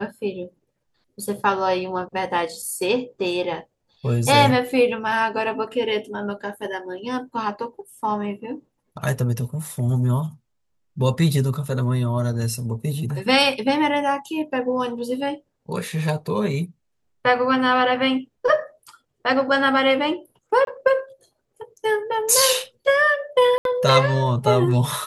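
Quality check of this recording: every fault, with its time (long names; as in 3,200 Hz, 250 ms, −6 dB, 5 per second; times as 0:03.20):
0:20.65–0:20.67: drop-out 22 ms
0:23.58–0:23.65: drop-out 72 ms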